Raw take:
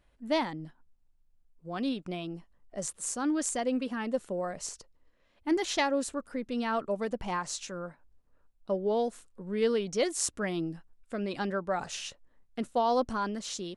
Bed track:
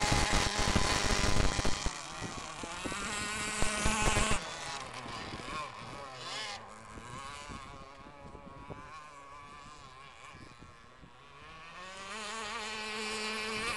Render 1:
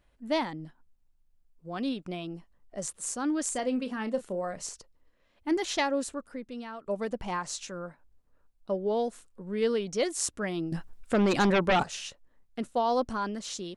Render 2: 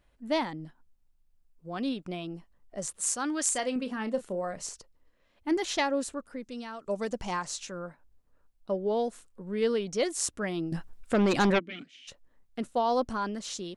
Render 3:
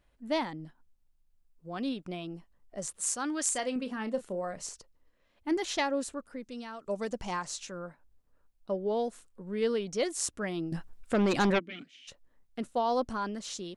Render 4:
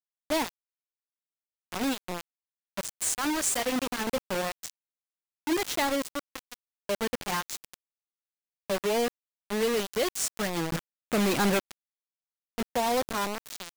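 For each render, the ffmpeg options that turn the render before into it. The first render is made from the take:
-filter_complex "[0:a]asettb=1/sr,asplit=3[a][b][c];[a]atrim=end=3.484[d];[b]atrim=start=3.48:end=4.63,asetpts=PTS-STARTPTS,afade=t=in:d=0.004:c=qsin,afade=t=out:st=1.146:d=0.004:c=qsin,asplit=2[e][f];[f]adelay=32,volume=-11.5dB[g];[e][g]amix=inputs=2:normalize=0,atrim=end_sample=50715[h];[c]atrim=start=4.626[i];[d][h]acrossfade=d=0.004:c1=hsin:c2=qsin[j];[j][i]acrossfade=d=0.004:c1=qsin:c2=hsin,asettb=1/sr,asplit=3[k][l][m];[k]atrim=end=10.724[n];[l]atrim=start=10.72:end=11.83,asetpts=PTS-STARTPTS,afade=t=in:d=0.004:c=qsin,afade=t=out:st=1.106:d=0.004:c=qsin,aeval=exprs='0.112*sin(PI/2*2.82*val(0)/0.112)':c=same[o];[m]atrim=start=11.826[p];[n][o]acrossfade=d=0.004:c1=hsin:c2=qsin[q];[q][p]acrossfade=d=0.004:c1=qsin:c2=hsin,asplit=2[r][s];[r]atrim=end=6.86,asetpts=PTS-STARTPTS,afade=t=out:st=5.99:d=0.87:silence=0.158489[t];[s]atrim=start=6.86,asetpts=PTS-STARTPTS,afade=t=in:d=0.004:c=hsin:silence=0.158489[u];[t][u]concat=n=2:v=0:a=1"
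-filter_complex "[0:a]asettb=1/sr,asplit=3[a][b][c];[a]atrim=end=2.994[d];[b]atrim=start=2.99:end=3.76,asetpts=PTS-STARTPTS,afade=t=in:d=0.004:c=qsin,afade=t=out:st=0.766:d=0.004:c=qsin,tiltshelf=f=640:g=-5.5[e];[c]atrim=start=3.756[f];[d][e]acrossfade=d=0.004:c1=hsin:c2=qsin[g];[g][f]acrossfade=d=0.004:c1=qsin:c2=hsin,asettb=1/sr,asplit=3[h][i][j];[h]atrim=end=6.404[k];[i]atrim=start=6.4:end=7.45,asetpts=PTS-STARTPTS,afade=t=in:d=0.004:c=qsin,afade=t=out:st=1.046:d=0.004:c=qsin,equalizer=f=6.5k:w=1.1:g=11[l];[j]atrim=start=7.446[m];[k][l]acrossfade=d=0.004:c1=hsin:c2=qsin[n];[n][m]acrossfade=d=0.004:c1=qsin:c2=hsin,asplit=3[o][p][q];[o]afade=t=out:st=11.58:d=0.02[r];[p]asplit=3[s][t][u];[s]bandpass=f=270:t=q:w=8,volume=0dB[v];[t]bandpass=f=2.29k:t=q:w=8,volume=-6dB[w];[u]bandpass=f=3.01k:t=q:w=8,volume=-9dB[x];[v][w][x]amix=inputs=3:normalize=0,afade=t=in:st=11.58:d=0.02,afade=t=out:st=12.07:d=0.02[y];[q]afade=t=in:st=12.07:d=0.02[z];[r][y][z]amix=inputs=3:normalize=0"
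-af "volume=-2dB"
-filter_complex "[0:a]asplit=2[a][b];[b]asoftclip=type=hard:threshold=-29dB,volume=-9.5dB[c];[a][c]amix=inputs=2:normalize=0,acrusher=bits=4:mix=0:aa=0.000001"

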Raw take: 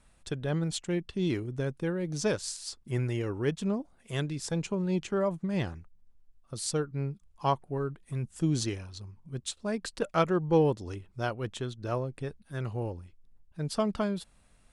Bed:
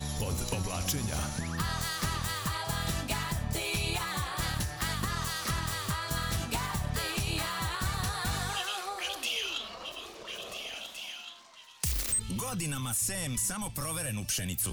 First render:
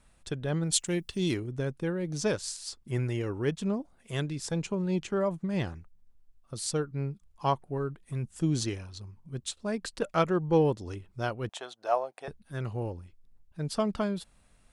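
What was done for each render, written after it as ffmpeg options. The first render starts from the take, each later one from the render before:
-filter_complex "[0:a]asplit=3[a][b][c];[a]afade=t=out:st=0.71:d=0.02[d];[b]aemphasis=mode=production:type=75kf,afade=t=in:st=0.71:d=0.02,afade=t=out:st=1.33:d=0.02[e];[c]afade=t=in:st=1.33:d=0.02[f];[d][e][f]amix=inputs=3:normalize=0,asettb=1/sr,asplit=3[g][h][i];[g]atrim=end=11.494[j];[h]atrim=start=11.49:end=12.28,asetpts=PTS-STARTPTS,afade=t=in:d=0.004:c=qsin,afade=t=out:st=0.786:d=0.004:c=qsin,highpass=f=720:t=q:w=4.5[k];[i]atrim=start=12.276[l];[j][k]acrossfade=d=0.004:c1=hsin:c2=qsin[m];[m][l]acrossfade=d=0.004:c1=qsin:c2=hsin"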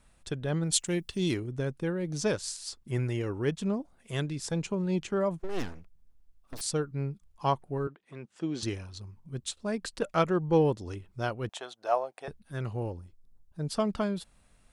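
-filter_complex "[0:a]asettb=1/sr,asplit=3[a][b][c];[a]atrim=end=5.394[d];[b]atrim=start=5.39:end=6.61,asetpts=PTS-STARTPTS,afade=t=in:d=0.004:c=qsin,afade=t=out:st=1.216:d=0.004:c=qsin,aeval=exprs='abs(val(0))':c=same[e];[c]atrim=start=6.606[f];[d][e]acrossfade=d=0.004:c1=hsin:c2=qsin[g];[g][f]acrossfade=d=0.004:c1=qsin:c2=hsin,asettb=1/sr,asplit=3[h][i][j];[h]atrim=end=7.874[k];[i]atrim=start=7.87:end=8.63,asetpts=PTS-STARTPTS,afade=t=in:d=0.004:c=qsin,afade=t=out:st=0.756:d=0.004:c=qsin,highpass=300,lowpass=3.8k[l];[j]atrim=start=8.626[m];[k][l]acrossfade=d=0.004:c1=hsin:c2=qsin[n];[n][m]acrossfade=d=0.004:c1=qsin:c2=hsin,asettb=1/sr,asplit=3[o][p][q];[o]atrim=end=12.984[r];[p]atrim=start=12.98:end=13.67,asetpts=PTS-STARTPTS,afade=t=in:d=0.004:c=qsin,afade=t=out:st=0.686:d=0.004:c=qsin,equalizer=f=2.4k:w=1.3:g=-9.5[s];[q]atrim=start=13.666[t];[r][s]acrossfade=d=0.004:c1=hsin:c2=qsin[u];[u][t]acrossfade=d=0.004:c1=qsin:c2=hsin"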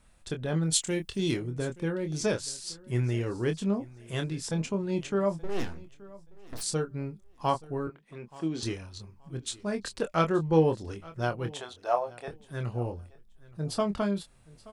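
-filter_complex "[0:a]asplit=2[a][b];[b]adelay=25,volume=-7dB[c];[a][c]amix=inputs=2:normalize=0,aecho=1:1:876|1752:0.0841|0.016"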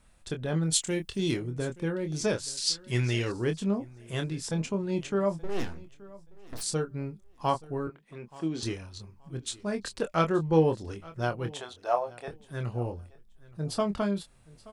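-filter_complex "[0:a]asettb=1/sr,asplit=3[a][b][c];[a]atrim=end=2.574[d];[b]atrim=start=2.57:end=3.32,asetpts=PTS-STARTPTS,afade=t=in:d=0.004:c=qsin,afade=t=out:st=0.746:d=0.004:c=qsin,equalizer=f=4.1k:w=0.52:g=13[e];[c]atrim=start=3.316[f];[d][e]acrossfade=d=0.004:c1=hsin:c2=qsin[g];[g][f]acrossfade=d=0.004:c1=qsin:c2=hsin"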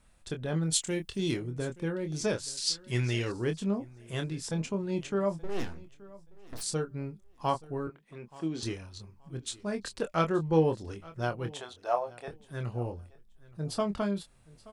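-af "volume=-2dB"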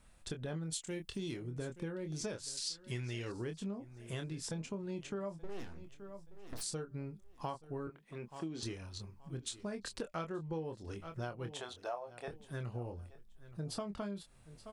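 -af "acompressor=threshold=-38dB:ratio=6"

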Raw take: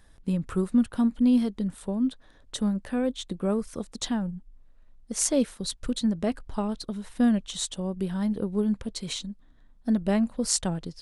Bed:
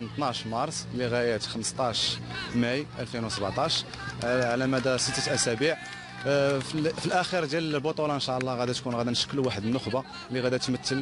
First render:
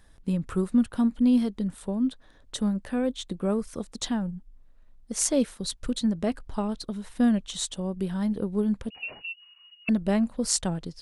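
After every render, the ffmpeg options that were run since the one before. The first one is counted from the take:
-filter_complex "[0:a]asettb=1/sr,asplit=3[a][b][c];[a]atrim=end=8.904[d];[b]atrim=start=8.9:end=9.89,asetpts=PTS-STARTPTS,afade=t=in:d=0.004:c=qsin,afade=t=out:st=0.986:d=0.004:c=qsin,lowpass=f=2.5k:t=q:w=0.5098,lowpass=f=2.5k:t=q:w=0.6013,lowpass=f=2.5k:t=q:w=0.9,lowpass=f=2.5k:t=q:w=2.563,afreqshift=-2900[e];[c]atrim=start=9.886[f];[d][e]acrossfade=d=0.004:c1=hsin:c2=qsin[g];[g][f]acrossfade=d=0.004:c1=qsin:c2=hsin"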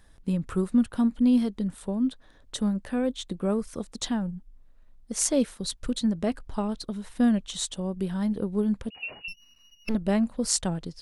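-filter_complex "[0:a]asettb=1/sr,asplit=3[a][b][c];[a]atrim=end=9.284[d];[b]atrim=start=9.28:end=9.95,asetpts=PTS-STARTPTS,afade=t=in:d=0.004:c=qsin,afade=t=out:st=0.666:d=0.004:c=qsin,aeval=exprs='max(val(0),0)':c=same[e];[c]atrim=start=9.946[f];[d][e]acrossfade=d=0.004:c1=hsin:c2=qsin[g];[g][f]acrossfade=d=0.004:c1=qsin:c2=hsin"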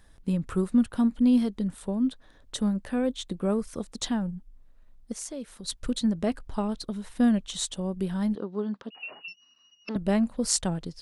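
-filter_complex "[0:a]asplit=3[a][b][c];[a]afade=t=out:st=5.12:d=0.02[d];[b]acompressor=threshold=-44dB:ratio=2:attack=3.2:release=140:knee=1:detection=peak,afade=t=in:st=5.12:d=0.02,afade=t=out:st=5.67:d=0.02[e];[c]afade=t=in:st=5.67:d=0.02[f];[d][e][f]amix=inputs=3:normalize=0,asettb=1/sr,asplit=3[g][h][i];[g]atrim=end=8.354[j];[h]atrim=start=8.35:end=9.96,asetpts=PTS-STARTPTS,afade=t=in:d=0.004:c=qsin,afade=t=out:st=1.606:d=0.004:c=qsin,highpass=290,equalizer=f=500:t=q:w=4:g=-4,equalizer=f=1.2k:t=q:w=4:g=4,equalizer=f=2.3k:t=q:w=4:g=-9,lowpass=f=5.3k:w=0.5412,lowpass=f=5.3k:w=1.3066[k];[i]atrim=start=9.956[l];[j][k]acrossfade=d=0.004:c1=hsin:c2=qsin[m];[m][l]acrossfade=d=0.004:c1=qsin:c2=hsin"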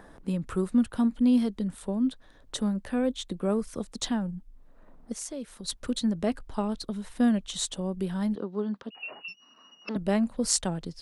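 -filter_complex "[0:a]acrossover=split=180|1500[a][b][c];[a]alimiter=level_in=11dB:limit=-24dB:level=0:latency=1,volume=-11dB[d];[b]acompressor=mode=upward:threshold=-40dB:ratio=2.5[e];[d][e][c]amix=inputs=3:normalize=0"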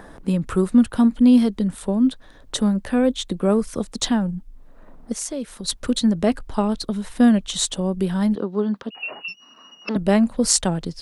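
-af "volume=8.5dB,alimiter=limit=-1dB:level=0:latency=1"

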